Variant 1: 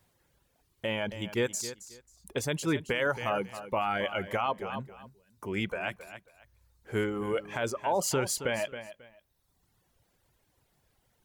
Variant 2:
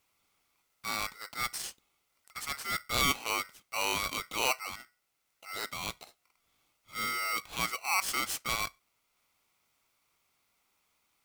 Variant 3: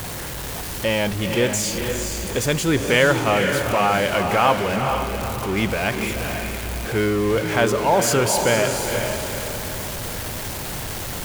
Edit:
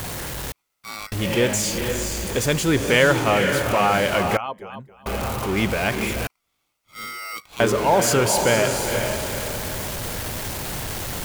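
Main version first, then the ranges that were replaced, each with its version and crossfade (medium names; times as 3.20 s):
3
0.52–1.12 s: from 2
4.37–5.06 s: from 1
6.27–7.60 s: from 2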